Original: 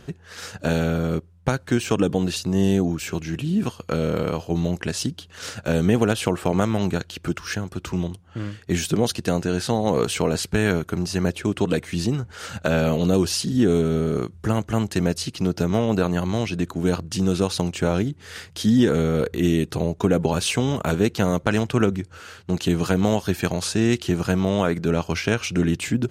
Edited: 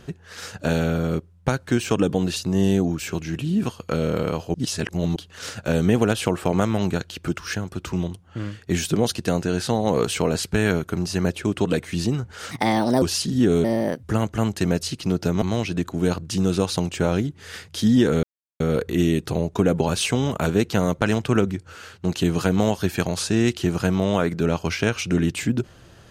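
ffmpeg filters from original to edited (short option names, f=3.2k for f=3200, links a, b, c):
-filter_complex "[0:a]asplit=9[a][b][c][d][e][f][g][h][i];[a]atrim=end=4.542[j];[b]atrim=start=4.538:end=5.162,asetpts=PTS-STARTPTS,areverse[k];[c]atrim=start=5.158:end=12.514[l];[d]atrim=start=12.51:end=13.21,asetpts=PTS-STARTPTS,asetrate=60417,aresample=44100[m];[e]atrim=start=13.206:end=13.834[n];[f]atrim=start=13.83:end=14.38,asetpts=PTS-STARTPTS,asetrate=62181,aresample=44100,atrim=end_sample=17202,asetpts=PTS-STARTPTS[o];[g]atrim=start=14.376:end=15.772[p];[h]atrim=start=16.238:end=19.05,asetpts=PTS-STARTPTS,afade=t=out:st=2.808:d=0.004:c=hsin,apad=pad_dur=0.37[q];[i]atrim=start=19.05,asetpts=PTS-STARTPTS,afade=t=in:d=0.004:c=hsin[r];[j][k]acrossfade=d=0.004:c1=hsin:c2=hsin[s];[s][l]acrossfade=d=0.004:c1=hsin:c2=hsin[t];[t][m]acrossfade=d=0.004:c1=hsin:c2=hsin[u];[u][n]acrossfade=d=0.004:c1=hsin:c2=hsin[v];[v][o]acrossfade=d=0.004:c1=hsin:c2=hsin[w];[w][p]acrossfade=d=0.004:c1=hsin:c2=hsin[x];[q][r]concat=n=2:v=0:a=1[y];[x][y]acrossfade=d=0.004:c1=hsin:c2=hsin"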